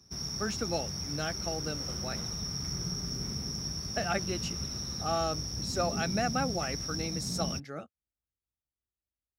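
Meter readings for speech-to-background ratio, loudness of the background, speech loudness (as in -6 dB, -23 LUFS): -1.5 dB, -34.5 LUFS, -36.0 LUFS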